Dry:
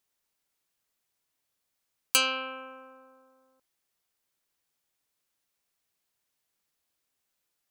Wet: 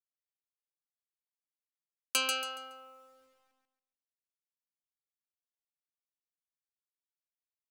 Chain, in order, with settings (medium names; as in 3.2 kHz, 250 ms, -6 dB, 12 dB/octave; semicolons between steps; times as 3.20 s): level-controlled noise filter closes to 340 Hz, open at -38 dBFS; bit crusher 11-bit; on a send: feedback delay 140 ms, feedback 29%, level -4 dB; on the sum: trim -6 dB